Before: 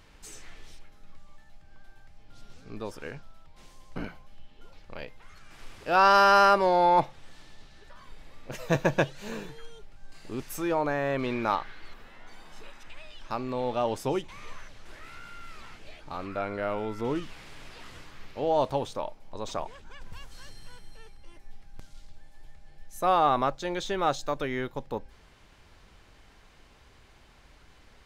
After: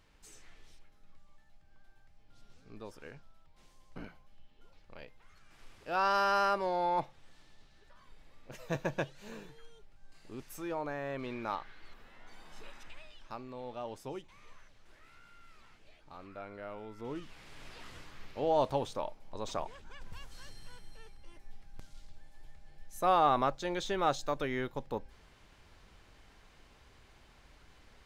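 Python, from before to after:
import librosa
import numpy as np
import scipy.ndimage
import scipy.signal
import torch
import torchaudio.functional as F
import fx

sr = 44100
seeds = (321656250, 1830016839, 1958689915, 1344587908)

y = fx.gain(x, sr, db=fx.line((11.45, -10.0), (12.8, -2.5), (13.49, -13.5), (16.91, -13.5), (17.68, -3.5)))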